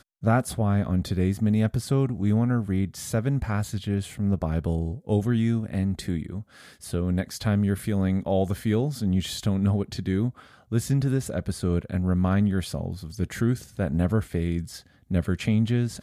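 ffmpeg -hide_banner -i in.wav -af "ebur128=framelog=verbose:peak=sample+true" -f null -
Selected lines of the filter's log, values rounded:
Integrated loudness:
  I:         -26.0 LUFS
  Threshold: -36.2 LUFS
Loudness range:
  LRA:         2.2 LU
  Threshold: -46.4 LUFS
  LRA low:   -27.4 LUFS
  LRA high:  -25.2 LUFS
Sample peak:
  Peak:      -10.0 dBFS
True peak:
  Peak:      -10.0 dBFS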